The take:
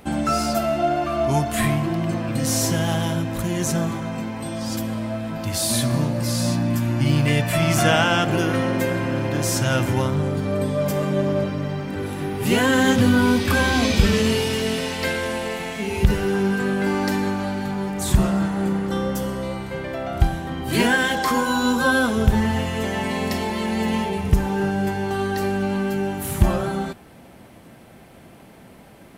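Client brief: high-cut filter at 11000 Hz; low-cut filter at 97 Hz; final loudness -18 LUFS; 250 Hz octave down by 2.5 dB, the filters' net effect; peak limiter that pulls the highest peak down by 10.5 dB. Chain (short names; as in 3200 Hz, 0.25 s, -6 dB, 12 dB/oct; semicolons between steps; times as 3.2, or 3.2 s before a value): HPF 97 Hz; LPF 11000 Hz; bell 250 Hz -3 dB; gain +7 dB; limiter -7.5 dBFS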